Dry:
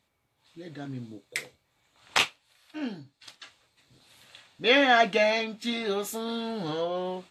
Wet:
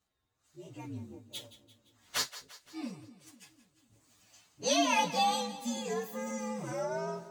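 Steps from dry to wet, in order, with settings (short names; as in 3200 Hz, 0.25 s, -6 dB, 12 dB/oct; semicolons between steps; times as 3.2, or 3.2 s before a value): inharmonic rescaling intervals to 123%; wow and flutter 25 cents; split-band echo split 430 Hz, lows 0.248 s, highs 0.172 s, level -15 dB; gain -3.5 dB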